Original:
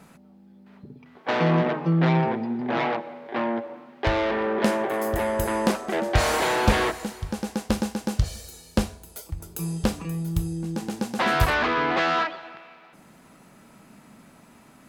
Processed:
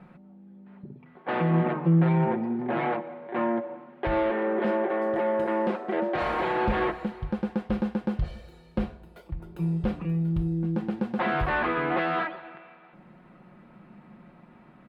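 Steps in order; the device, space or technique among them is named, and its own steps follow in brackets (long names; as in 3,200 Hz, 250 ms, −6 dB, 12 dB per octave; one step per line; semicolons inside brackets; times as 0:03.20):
0:04.30–0:06.22: Chebyshev band-pass filter 270–8,400 Hz, order 2
clipper into limiter (hard clipping −9.5 dBFS, distortion −29 dB; brickwall limiter −16 dBFS, peak gain reduction 6.5 dB)
high-frequency loss of the air 490 metres
comb filter 5.6 ms, depth 51%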